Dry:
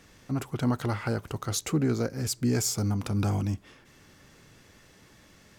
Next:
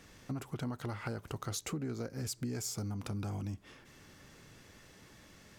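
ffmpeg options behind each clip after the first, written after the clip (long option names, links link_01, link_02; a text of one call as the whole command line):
ffmpeg -i in.wav -af "acompressor=threshold=-34dB:ratio=6,volume=-1.5dB" out.wav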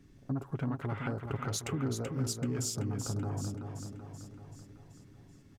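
ffmpeg -i in.wav -af "afwtdn=0.00316,aecho=1:1:7.3:0.33,aecho=1:1:382|764|1146|1528|1910|2292|2674:0.473|0.27|0.154|0.0876|0.0499|0.0285|0.0162,volume=2.5dB" out.wav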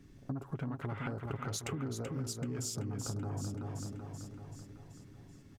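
ffmpeg -i in.wav -af "acompressor=threshold=-36dB:ratio=6,volume=1.5dB" out.wav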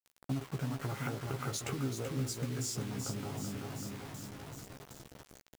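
ffmpeg -i in.wav -filter_complex "[0:a]highpass=frequency=62:width=0.5412,highpass=frequency=62:width=1.3066,acrusher=bits=7:mix=0:aa=0.000001,asplit=2[link_01][link_02];[link_02]adelay=15,volume=-5dB[link_03];[link_01][link_03]amix=inputs=2:normalize=0" out.wav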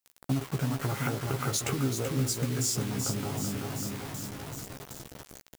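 ffmpeg -i in.wav -af "highshelf=frequency=7400:gain=5.5,volume=6.5dB" out.wav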